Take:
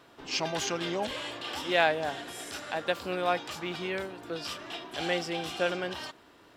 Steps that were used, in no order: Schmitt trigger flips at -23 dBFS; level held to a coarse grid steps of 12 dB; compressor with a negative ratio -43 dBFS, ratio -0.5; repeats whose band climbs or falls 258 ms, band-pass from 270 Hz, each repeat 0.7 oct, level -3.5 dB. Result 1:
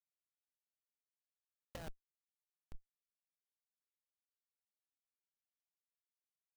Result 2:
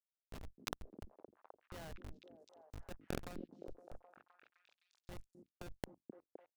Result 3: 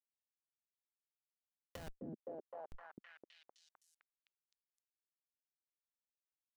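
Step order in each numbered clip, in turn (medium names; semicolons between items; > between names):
repeats whose band climbs or falls > level held to a coarse grid > Schmitt trigger > compressor with a negative ratio; Schmitt trigger > level held to a coarse grid > compressor with a negative ratio > repeats whose band climbs or falls; level held to a coarse grid > Schmitt trigger > repeats whose band climbs or falls > compressor with a negative ratio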